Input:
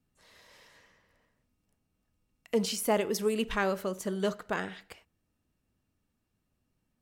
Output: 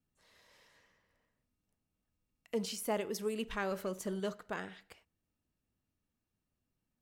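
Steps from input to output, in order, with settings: 3.71–4.20 s: waveshaping leveller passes 1; trim -7.5 dB

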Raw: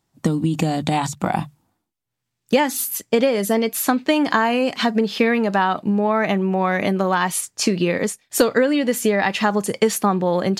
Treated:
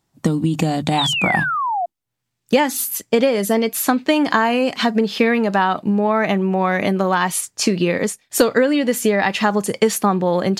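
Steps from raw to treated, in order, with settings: painted sound fall, 0.98–1.86 s, 670–4000 Hz -22 dBFS; trim +1.5 dB

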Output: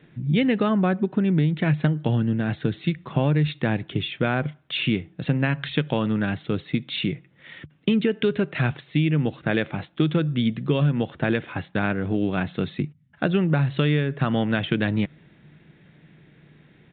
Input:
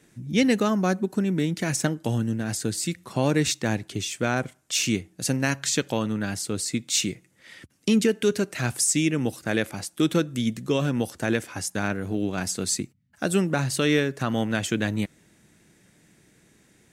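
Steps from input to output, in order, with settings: peaking EQ 150 Hz +12.5 dB 0.23 oct; compression, threshold -21 dBFS, peak gain reduction 9.5 dB; resampled via 8 kHz; trim +4 dB

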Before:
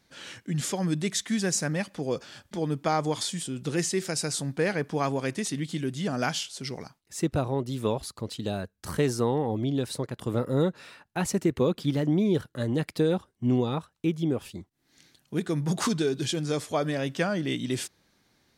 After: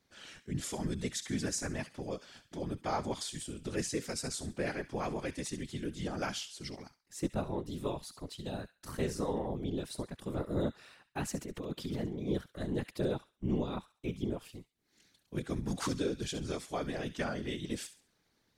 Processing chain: 11.35–12.28 s: compressor with a negative ratio -29 dBFS, ratio -1; feedback echo behind a high-pass 68 ms, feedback 31%, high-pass 1.7 kHz, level -12 dB; whisper effect; trim -8.5 dB

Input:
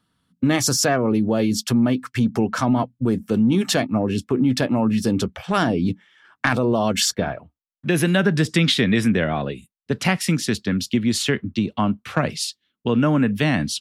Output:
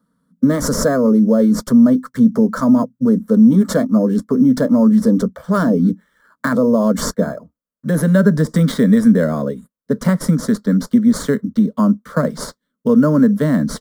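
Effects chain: high-pass 290 Hz 6 dB/octave; treble shelf 7.2 kHz +7 dB; in parallel at -7 dB: sample-rate reducer 5.8 kHz, jitter 0%; on the sum: tilt shelf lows +8.5 dB, about 780 Hz; static phaser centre 520 Hz, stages 8; trim +3 dB

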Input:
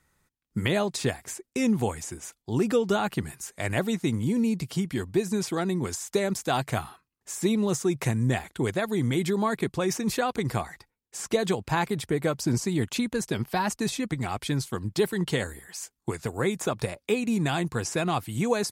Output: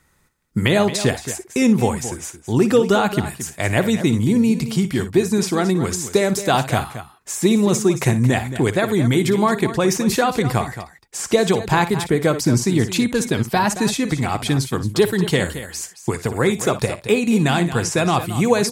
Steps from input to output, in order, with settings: multi-tap echo 58/223 ms -13/-12.5 dB; trim +8.5 dB

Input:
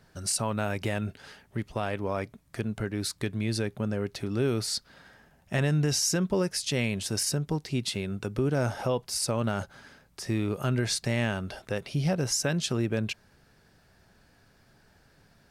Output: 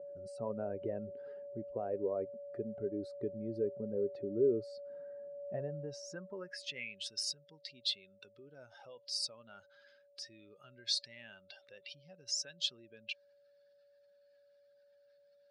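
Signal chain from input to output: spectral contrast enhancement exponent 1.8; whistle 570 Hz -40 dBFS; band-pass sweep 430 Hz -> 3.8 kHz, 5.33–7.22 s

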